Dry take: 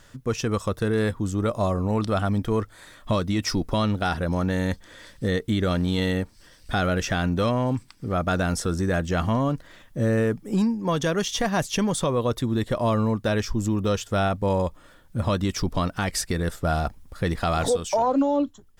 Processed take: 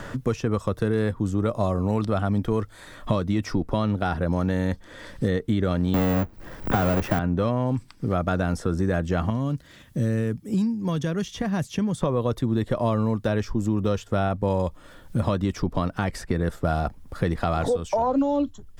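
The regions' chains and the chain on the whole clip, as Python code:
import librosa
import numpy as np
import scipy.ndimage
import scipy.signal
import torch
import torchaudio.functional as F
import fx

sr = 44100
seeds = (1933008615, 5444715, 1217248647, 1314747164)

y = fx.chain(x, sr, fx.halfwave_hold(),
    fx.resample_bad(factor=2, down='none', up='zero_stuff'),
    fx.band_squash(depth_pct=40), at=(5.94, 7.19))
y = fx.chain(y, sr, fx.highpass(hz=68.0, slope=12),
    fx.peak_eq(hz=760.0, db=-11.0, octaves=2.9), at=(9.3, 12.02))
y = fx.high_shelf(y, sr, hz=2100.0, db=-10.0)
y = fx.band_squash(y, sr, depth_pct=70)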